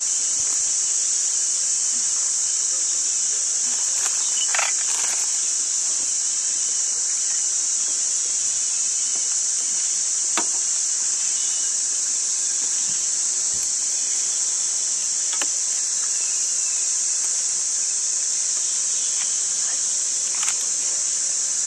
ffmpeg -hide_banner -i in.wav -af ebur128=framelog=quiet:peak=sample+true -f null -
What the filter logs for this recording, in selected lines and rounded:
Integrated loudness:
  I:         -19.1 LUFS
  Threshold: -29.1 LUFS
Loudness range:
  LRA:         0.9 LU
  Threshold: -39.1 LUFS
  LRA low:   -19.4 LUFS
  LRA high:  -18.5 LUFS
Sample peak:
  Peak:       -4.9 dBFS
True peak:
  Peak:       -4.7 dBFS